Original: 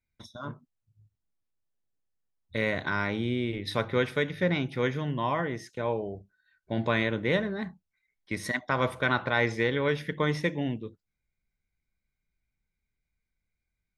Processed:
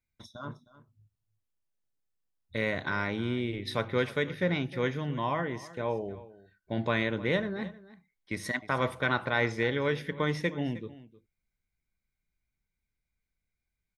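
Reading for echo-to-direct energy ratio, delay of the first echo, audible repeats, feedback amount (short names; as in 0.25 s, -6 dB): -18.0 dB, 0.311 s, 1, no steady repeat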